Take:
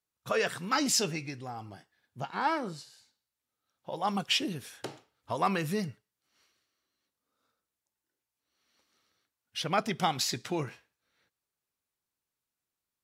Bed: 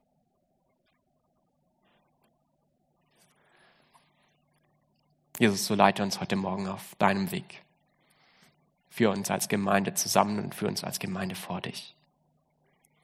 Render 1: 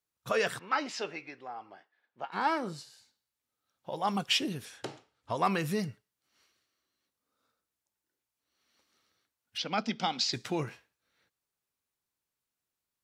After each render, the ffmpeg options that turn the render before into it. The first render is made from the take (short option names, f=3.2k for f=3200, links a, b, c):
-filter_complex "[0:a]asettb=1/sr,asplit=3[a][b][c];[a]atrim=end=0.594[d];[b]atrim=start=0.59:end=2.32,asetpts=PTS-STARTPTS,afade=t=in:d=0.004:c=qsin,afade=t=out:st=1.726:d=0.004:c=qsin,highpass=460,lowpass=2.6k[e];[c]atrim=start=2.316[f];[d][e]acrossfade=d=0.004:c1=hsin:c2=qsin[g];[g][f]acrossfade=d=0.004:c1=qsin:c2=hsin,asettb=1/sr,asplit=3[h][i][j];[h]atrim=end=4.654[k];[i]atrim=start=4.65:end=5.43,asetpts=PTS-STARTPTS,afade=t=in:d=0.004:c=qsin,afade=t=out:st=0.776:d=0.004:c=qsin,lowpass=8.9k[l];[j]atrim=start=5.426[m];[k][l]acrossfade=d=0.004:c1=hsin:c2=qsin[n];[n][m]acrossfade=d=0.004:c1=qsin:c2=hsin,asplit=3[o][p][q];[o]afade=t=out:st=9.57:d=0.02[r];[p]highpass=f=210:w=0.5412,highpass=f=210:w=1.3066,equalizer=f=220:t=q:w=4:g=6,equalizer=f=380:t=q:w=4:g=-9,equalizer=f=640:t=q:w=4:g=-5,equalizer=f=1.1k:t=q:w=4:g=-7,equalizer=f=1.8k:t=q:w=4:g=-6,equalizer=f=4.7k:t=q:w=4:g=4,lowpass=f=5.9k:w=0.5412,lowpass=f=5.9k:w=1.3066,afade=t=in:st=9.57:d=0.02,afade=t=out:st=10.32:d=0.02[s];[q]afade=t=in:st=10.32:d=0.02[t];[r][s][t]amix=inputs=3:normalize=0"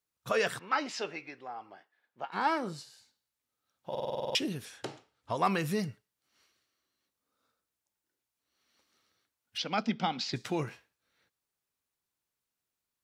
-filter_complex "[0:a]asettb=1/sr,asplit=3[a][b][c];[a]atrim=end=9.864[d];[b]atrim=start=9.86:end=10.36,asetpts=PTS-STARTPTS,afade=t=in:d=0.004:c=qsin,afade=t=out:st=0.496:d=0.004:c=qsin,bass=f=250:g=5,treble=f=4k:g=-10[e];[c]atrim=start=10.356[f];[d][e]acrossfade=d=0.004:c1=hsin:c2=qsin[g];[g][f]acrossfade=d=0.004:c1=qsin:c2=hsin,asplit=10[h][i][j][k][l][m][n][o][p][q];[h]atrim=end=3.952[r];[i]atrim=start=3.898:end=3.952[s];[j]atrim=start=3.898:end=3.952[t];[k]atrim=start=3.898:end=3.952[u];[l]atrim=start=3.898:end=3.952[v];[m]atrim=start=3.898:end=3.952[w];[n]atrim=start=3.898:end=3.952[x];[o]atrim=start=3.898:end=3.952[y];[p]atrim=start=3.898:end=3.952[z];[q]atrim=start=4.348[aa];[r][s]acrossfade=d=0.004:c1=hsin:c2=hsin[ab];[ab][t]acrossfade=d=0.004:c1=hsin:c2=hsin[ac];[ac][u]acrossfade=d=0.004:c1=hsin:c2=hsin[ad];[ad][v]acrossfade=d=0.004:c1=hsin:c2=hsin[ae];[ae][w]acrossfade=d=0.004:c1=hsin:c2=hsin[af];[af][x]acrossfade=d=0.004:c1=hsin:c2=hsin[ag];[ag][y]acrossfade=d=0.004:c1=hsin:c2=hsin[ah];[ah][z]acrossfade=d=0.004:c1=hsin:c2=hsin[ai];[ai][aa]acrossfade=d=0.004:c1=hsin:c2=hsin"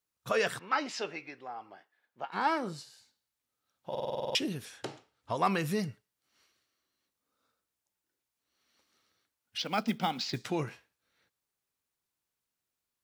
-filter_complex "[0:a]asettb=1/sr,asplit=3[a][b][c];[a]atrim=end=9.594[d];[b]atrim=start=9.59:end=10.47,asetpts=PTS-STARTPTS,afade=t=in:d=0.004:c=qsin,afade=t=out:st=0.876:d=0.004:c=qsin,acrusher=bits=6:mode=log:mix=0:aa=0.000001[e];[c]atrim=start=10.466[f];[d][e]acrossfade=d=0.004:c1=hsin:c2=qsin[g];[g][f]acrossfade=d=0.004:c1=qsin:c2=hsin"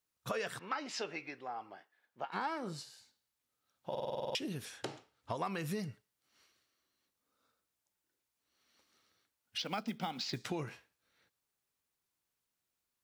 -af "acompressor=threshold=-35dB:ratio=5"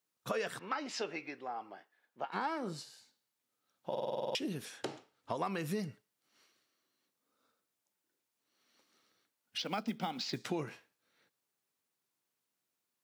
-af "highpass=180,lowshelf=f=500:g=4.5"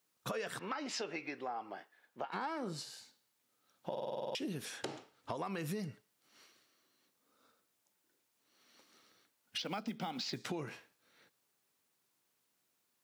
-filter_complex "[0:a]asplit=2[a][b];[b]alimiter=level_in=7dB:limit=-24dB:level=0:latency=1,volume=-7dB,volume=0.5dB[c];[a][c]amix=inputs=2:normalize=0,acompressor=threshold=-40dB:ratio=2.5"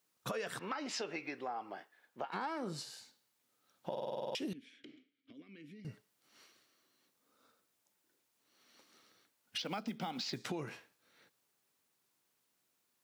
-filter_complex "[0:a]asettb=1/sr,asplit=3[a][b][c];[a]atrim=end=4.534[d];[b]atrim=start=4.53:end=5.85,asetpts=PTS-STARTPTS,afade=t=in:d=0.004:c=qsin,afade=t=out:st=1.316:d=0.004:c=qsin,asplit=3[e][f][g];[e]bandpass=f=270:t=q:w=8,volume=0dB[h];[f]bandpass=f=2.29k:t=q:w=8,volume=-6dB[i];[g]bandpass=f=3.01k:t=q:w=8,volume=-9dB[j];[h][i][j]amix=inputs=3:normalize=0[k];[c]atrim=start=5.846[l];[d][k]acrossfade=d=0.004:c1=hsin:c2=qsin[m];[m][l]acrossfade=d=0.004:c1=qsin:c2=hsin"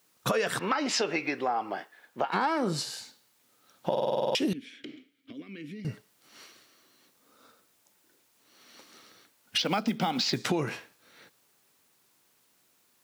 -af "volume=12dB"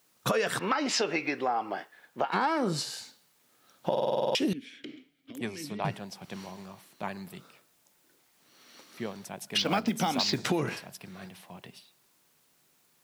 -filter_complex "[1:a]volume=-12.5dB[a];[0:a][a]amix=inputs=2:normalize=0"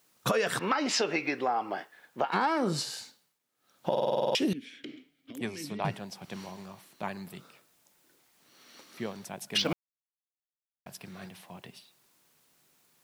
-filter_complex "[0:a]asplit=5[a][b][c][d][e];[a]atrim=end=3.39,asetpts=PTS-STARTPTS,afade=t=out:st=3.01:d=0.38:silence=0.158489[f];[b]atrim=start=3.39:end=3.55,asetpts=PTS-STARTPTS,volume=-16dB[g];[c]atrim=start=3.55:end=9.73,asetpts=PTS-STARTPTS,afade=t=in:d=0.38:silence=0.158489,afade=t=out:st=6.176:d=0.004:c=hsin[h];[d]atrim=start=9.73:end=10.86,asetpts=PTS-STARTPTS,volume=0[i];[e]atrim=start=10.86,asetpts=PTS-STARTPTS,afade=t=in:d=0.004:c=hsin[j];[f][g][h][i][j]concat=n=5:v=0:a=1"